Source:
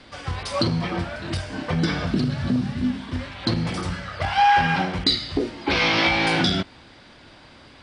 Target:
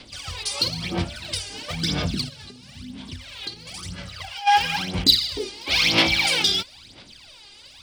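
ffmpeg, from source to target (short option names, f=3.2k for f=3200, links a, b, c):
-filter_complex "[0:a]asplit=3[a][b][c];[a]afade=t=out:st=2.28:d=0.02[d];[b]acompressor=threshold=-31dB:ratio=6,afade=t=in:st=2.28:d=0.02,afade=t=out:st=4.46:d=0.02[e];[c]afade=t=in:st=4.46:d=0.02[f];[d][e][f]amix=inputs=3:normalize=0,aphaser=in_gain=1:out_gain=1:delay=2.5:decay=0.75:speed=1:type=sinusoidal,aexciter=amount=4.1:drive=6.5:freq=2.4k,volume=-10dB"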